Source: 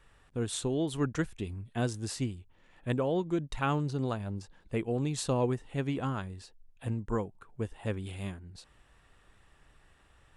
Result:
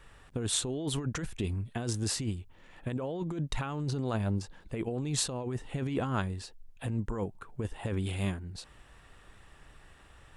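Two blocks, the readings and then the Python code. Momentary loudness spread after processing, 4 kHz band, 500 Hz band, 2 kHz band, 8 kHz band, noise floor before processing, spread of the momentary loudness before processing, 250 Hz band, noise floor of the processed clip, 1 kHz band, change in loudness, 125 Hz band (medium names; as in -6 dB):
11 LU, +5.0 dB, -3.5 dB, -1.0 dB, +6.5 dB, -64 dBFS, 12 LU, -1.5 dB, -57 dBFS, -3.0 dB, -0.5 dB, +0.5 dB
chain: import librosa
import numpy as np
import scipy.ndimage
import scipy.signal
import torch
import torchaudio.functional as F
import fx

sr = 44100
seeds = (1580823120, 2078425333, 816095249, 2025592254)

y = fx.over_compress(x, sr, threshold_db=-35.0, ratio=-1.0)
y = F.gain(torch.from_numpy(y), 3.0).numpy()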